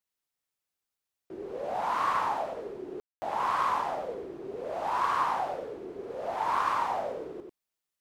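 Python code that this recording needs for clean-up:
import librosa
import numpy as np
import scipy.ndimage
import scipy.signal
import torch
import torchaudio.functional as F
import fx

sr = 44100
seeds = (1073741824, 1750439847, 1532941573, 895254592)

y = fx.fix_declip(x, sr, threshold_db=-18.5)
y = fx.fix_ambience(y, sr, seeds[0], print_start_s=0.0, print_end_s=0.5, start_s=3.0, end_s=3.22)
y = fx.fix_echo_inverse(y, sr, delay_ms=93, level_db=-5.5)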